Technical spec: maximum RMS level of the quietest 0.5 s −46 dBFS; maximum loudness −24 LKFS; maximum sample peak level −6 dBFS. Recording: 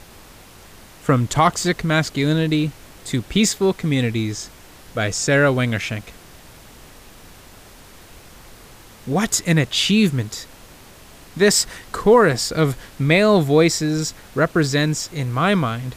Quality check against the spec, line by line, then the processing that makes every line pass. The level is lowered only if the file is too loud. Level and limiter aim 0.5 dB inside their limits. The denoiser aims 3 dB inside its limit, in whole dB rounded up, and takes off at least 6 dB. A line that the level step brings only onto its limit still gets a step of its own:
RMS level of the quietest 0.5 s −44 dBFS: out of spec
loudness −19.0 LKFS: out of spec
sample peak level −3.0 dBFS: out of spec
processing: level −5.5 dB

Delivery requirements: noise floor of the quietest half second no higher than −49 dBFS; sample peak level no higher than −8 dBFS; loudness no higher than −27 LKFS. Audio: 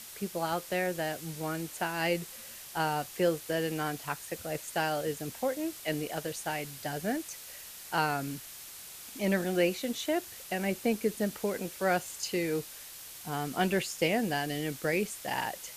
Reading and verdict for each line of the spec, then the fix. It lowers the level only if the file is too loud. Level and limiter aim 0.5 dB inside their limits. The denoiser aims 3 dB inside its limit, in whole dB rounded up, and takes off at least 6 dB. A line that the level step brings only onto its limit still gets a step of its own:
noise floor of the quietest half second −47 dBFS: out of spec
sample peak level −13.5 dBFS: in spec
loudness −32.5 LKFS: in spec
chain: broadband denoise 6 dB, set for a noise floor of −47 dBFS

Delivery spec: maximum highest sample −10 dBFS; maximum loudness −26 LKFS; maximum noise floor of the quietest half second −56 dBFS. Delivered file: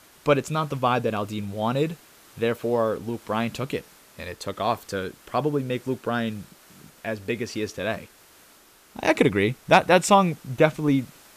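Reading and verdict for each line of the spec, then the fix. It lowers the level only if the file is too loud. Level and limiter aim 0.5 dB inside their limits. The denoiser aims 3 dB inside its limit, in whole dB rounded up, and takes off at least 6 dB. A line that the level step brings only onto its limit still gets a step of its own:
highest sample −4.0 dBFS: out of spec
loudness −24.5 LKFS: out of spec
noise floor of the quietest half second −54 dBFS: out of spec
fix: broadband denoise 6 dB, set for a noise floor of −54 dBFS
level −2 dB
brickwall limiter −10.5 dBFS

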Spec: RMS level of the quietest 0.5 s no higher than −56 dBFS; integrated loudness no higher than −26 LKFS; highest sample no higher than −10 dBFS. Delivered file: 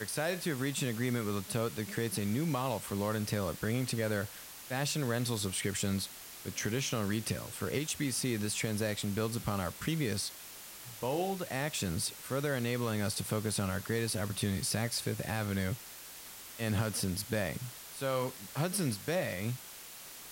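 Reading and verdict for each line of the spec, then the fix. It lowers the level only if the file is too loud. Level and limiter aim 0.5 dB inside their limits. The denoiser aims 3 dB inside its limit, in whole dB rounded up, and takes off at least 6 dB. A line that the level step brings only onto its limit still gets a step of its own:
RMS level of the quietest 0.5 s −49 dBFS: out of spec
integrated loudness −34.5 LKFS: in spec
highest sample −18.5 dBFS: in spec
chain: broadband denoise 10 dB, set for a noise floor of −49 dBFS

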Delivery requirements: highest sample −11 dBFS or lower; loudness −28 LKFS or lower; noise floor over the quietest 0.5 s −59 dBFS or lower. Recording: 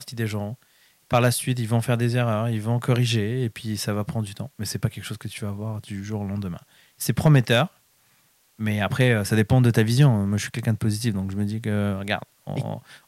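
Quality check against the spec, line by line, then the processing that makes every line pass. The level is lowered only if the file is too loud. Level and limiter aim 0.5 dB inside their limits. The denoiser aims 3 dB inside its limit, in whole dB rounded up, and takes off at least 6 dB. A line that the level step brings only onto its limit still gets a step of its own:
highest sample −6.5 dBFS: out of spec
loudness −24.0 LKFS: out of spec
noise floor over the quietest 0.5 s −62 dBFS: in spec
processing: level −4.5 dB
brickwall limiter −11.5 dBFS

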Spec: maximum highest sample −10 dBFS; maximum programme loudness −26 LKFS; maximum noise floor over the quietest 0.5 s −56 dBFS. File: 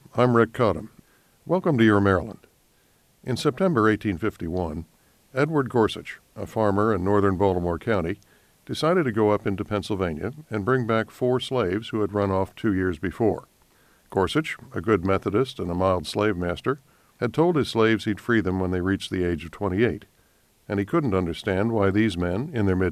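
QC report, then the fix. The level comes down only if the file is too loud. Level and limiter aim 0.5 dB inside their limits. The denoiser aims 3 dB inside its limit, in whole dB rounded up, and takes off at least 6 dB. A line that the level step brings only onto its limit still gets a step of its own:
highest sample −6.0 dBFS: out of spec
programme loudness −24.0 LKFS: out of spec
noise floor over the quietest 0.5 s −62 dBFS: in spec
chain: level −2.5 dB
brickwall limiter −10.5 dBFS

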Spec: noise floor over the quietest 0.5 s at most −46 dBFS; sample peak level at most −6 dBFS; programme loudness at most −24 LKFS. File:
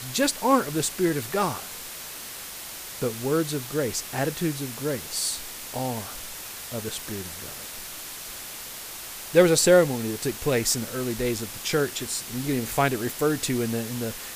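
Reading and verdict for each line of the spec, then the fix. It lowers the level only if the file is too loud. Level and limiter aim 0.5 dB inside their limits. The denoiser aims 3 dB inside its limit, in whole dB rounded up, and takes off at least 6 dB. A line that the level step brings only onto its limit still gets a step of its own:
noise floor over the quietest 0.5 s −38 dBFS: out of spec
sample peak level −5.0 dBFS: out of spec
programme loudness −26.5 LKFS: in spec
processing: broadband denoise 11 dB, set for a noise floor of −38 dBFS
brickwall limiter −6.5 dBFS

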